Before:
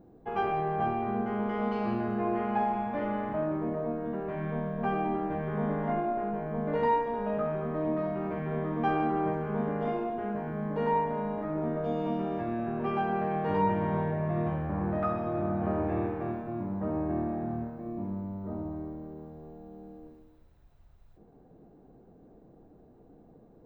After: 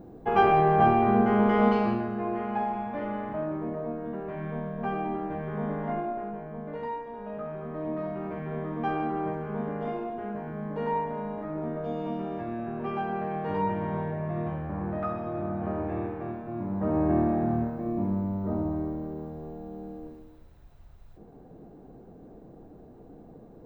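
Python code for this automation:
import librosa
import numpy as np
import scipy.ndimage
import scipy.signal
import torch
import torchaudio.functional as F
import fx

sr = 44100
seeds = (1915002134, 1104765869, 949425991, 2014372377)

y = fx.gain(x, sr, db=fx.line((1.68, 9.0), (2.1, -1.0), (6.01, -1.0), (6.94, -9.0), (8.06, -1.5), (16.39, -1.5), (17.07, 7.0)))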